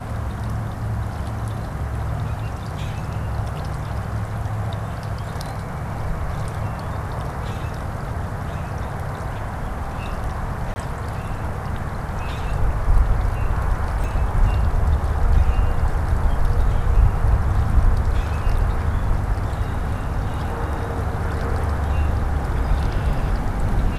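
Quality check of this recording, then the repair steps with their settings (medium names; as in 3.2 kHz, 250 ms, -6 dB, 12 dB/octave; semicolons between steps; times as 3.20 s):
10.74–10.76 s: dropout 20 ms
14.04 s: dropout 2.4 ms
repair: interpolate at 10.74 s, 20 ms; interpolate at 14.04 s, 2.4 ms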